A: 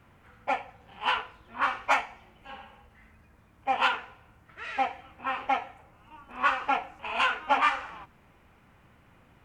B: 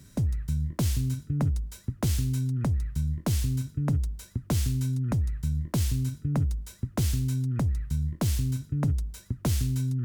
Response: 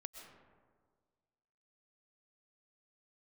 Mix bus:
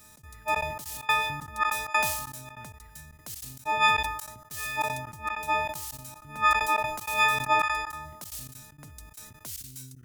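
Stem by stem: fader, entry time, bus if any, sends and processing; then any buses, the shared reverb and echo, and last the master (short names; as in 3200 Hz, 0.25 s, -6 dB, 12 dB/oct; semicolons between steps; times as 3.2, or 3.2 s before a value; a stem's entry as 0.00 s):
-6.5 dB, 0.00 s, send -5 dB, frequency quantiser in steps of 6 st
-4.0 dB, 0.00 s, no send, resonator 97 Hz, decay 1.1 s, harmonics odd, mix 40%; limiter -29.5 dBFS, peak gain reduction 9 dB; tilt +4.5 dB/oct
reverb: on, RT60 1.7 s, pre-delay 85 ms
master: low shelf 97 Hz +9.5 dB; step gate "xx.xxxx.xx." 193 bpm -24 dB; sustainer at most 56 dB/s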